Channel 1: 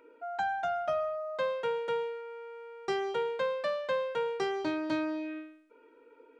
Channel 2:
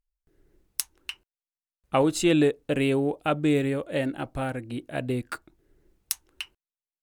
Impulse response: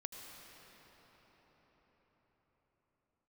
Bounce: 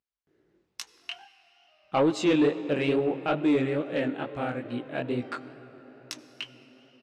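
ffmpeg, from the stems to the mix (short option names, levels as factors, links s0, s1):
-filter_complex "[0:a]alimiter=level_in=2.51:limit=0.0631:level=0:latency=1,volume=0.398,adelay=800,volume=0.282,asplit=2[s0][s1];[s1]volume=0.188[s2];[1:a]equalizer=f=9900:t=o:w=0.22:g=-8,volume=1.12,asplit=3[s3][s4][s5];[s4]volume=0.447[s6];[s5]apad=whole_len=317346[s7];[s0][s7]sidechaingate=range=0.0224:threshold=0.00282:ratio=16:detection=peak[s8];[2:a]atrim=start_sample=2205[s9];[s2][s6]amix=inputs=2:normalize=0[s10];[s10][s9]afir=irnorm=-1:irlink=0[s11];[s8][s3][s11]amix=inputs=3:normalize=0,highpass=160,lowpass=4800,flanger=delay=16:depth=7.9:speed=2.3,asoftclip=type=tanh:threshold=0.188"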